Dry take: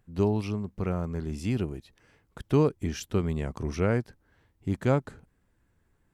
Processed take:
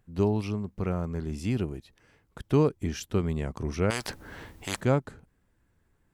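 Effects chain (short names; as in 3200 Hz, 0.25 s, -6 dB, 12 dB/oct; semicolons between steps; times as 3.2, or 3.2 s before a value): 3.9–4.81 spectral compressor 4:1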